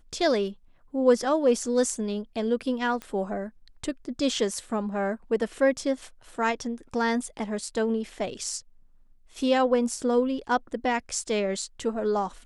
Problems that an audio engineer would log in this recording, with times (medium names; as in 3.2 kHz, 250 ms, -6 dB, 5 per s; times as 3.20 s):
3.02 s: pop -21 dBFS